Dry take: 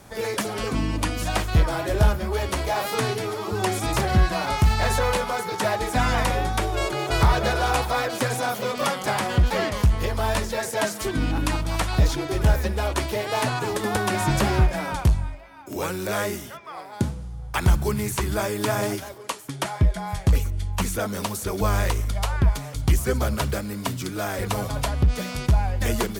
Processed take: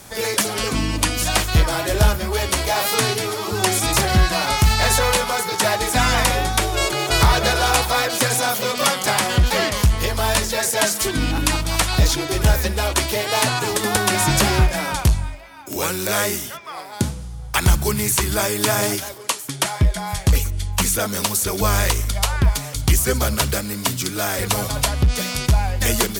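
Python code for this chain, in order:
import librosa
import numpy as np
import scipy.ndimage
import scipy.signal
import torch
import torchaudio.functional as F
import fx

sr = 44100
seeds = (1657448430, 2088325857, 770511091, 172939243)

y = fx.high_shelf(x, sr, hz=2400.0, db=10.5)
y = F.gain(torch.from_numpy(y), 2.5).numpy()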